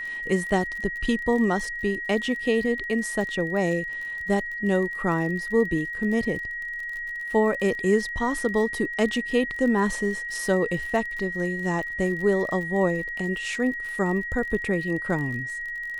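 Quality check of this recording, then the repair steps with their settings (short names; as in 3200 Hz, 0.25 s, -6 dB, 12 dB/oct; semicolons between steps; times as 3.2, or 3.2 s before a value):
crackle 34/s -33 dBFS
tone 1900 Hz -30 dBFS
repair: de-click; notch 1900 Hz, Q 30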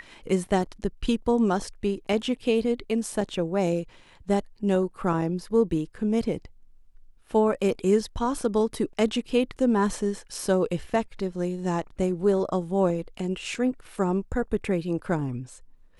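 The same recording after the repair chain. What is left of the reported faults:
none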